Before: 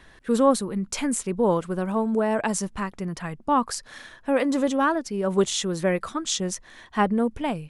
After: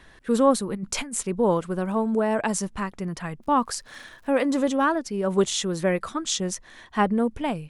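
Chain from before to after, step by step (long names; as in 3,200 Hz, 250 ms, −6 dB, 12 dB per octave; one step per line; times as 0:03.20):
0:00.69–0:01.23: compressor whose output falls as the input rises −29 dBFS, ratio −0.5
0:03.42–0:04.41: surface crackle 140 per second −46 dBFS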